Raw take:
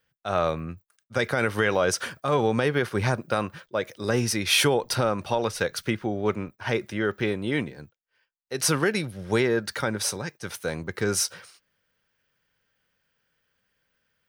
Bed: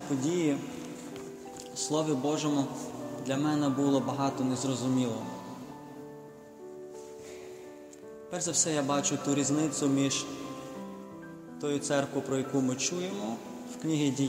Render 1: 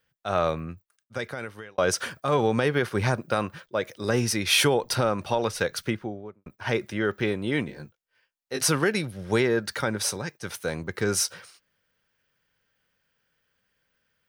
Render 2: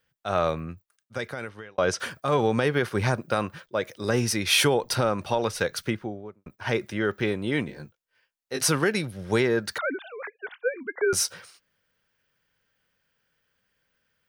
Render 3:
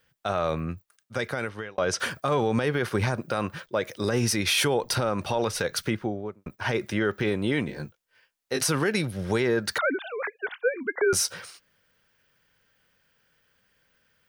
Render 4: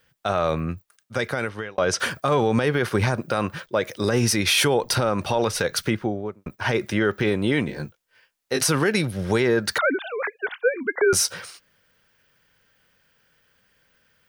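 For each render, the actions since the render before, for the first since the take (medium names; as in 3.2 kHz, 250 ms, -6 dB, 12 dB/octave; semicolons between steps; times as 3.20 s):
0.51–1.78 s: fade out; 5.76–6.46 s: studio fade out; 7.67–8.65 s: doubling 19 ms -3 dB
1.49–2.00 s: distance through air 68 m; 9.78–11.13 s: formants replaced by sine waves
in parallel at 0 dB: compression, threshold -32 dBFS, peak gain reduction 14.5 dB; on the sum: peak limiter -14.5 dBFS, peak gain reduction 7.5 dB
trim +4 dB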